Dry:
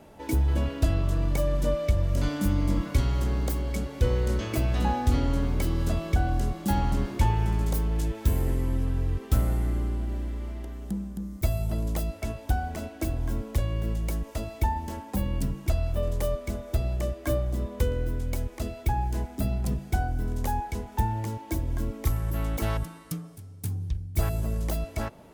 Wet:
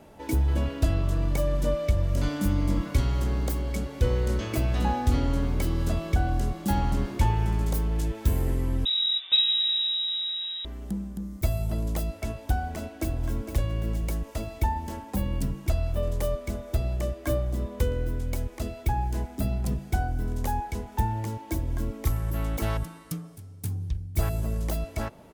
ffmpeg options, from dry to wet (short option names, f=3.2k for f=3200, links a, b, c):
-filter_complex "[0:a]asettb=1/sr,asplit=3[a][b][c];[a]atrim=end=8.854[d];[b]atrim=start=8.85:end=10.65,asetpts=PTS-STARTPTS,afade=t=in:d=0.004:c=qsin,afade=t=out:st=1.796:d=0.004:c=qsin,lowpass=f=3.3k:t=q:w=0.5098,lowpass=f=3.3k:t=q:w=0.6013,lowpass=f=3.3k:t=q:w=0.9,lowpass=f=3.3k:t=q:w=2.563,afreqshift=-3900[e];[c]atrim=start=10.646[f];[d][e]acrossfade=d=0.004:c1=hsin:c2=qsin[g];[g][f]acrossfade=d=0.004:c1=qsin:c2=hsin,asplit=2[h][i];[i]afade=t=in:st=12.77:d=0.01,afade=t=out:st=13.2:d=0.01,aecho=0:1:460|920|1380|1840|2300|2760:0.334965|0.184231|0.101327|0.0557299|0.0306514|0.0168583[j];[h][j]amix=inputs=2:normalize=0"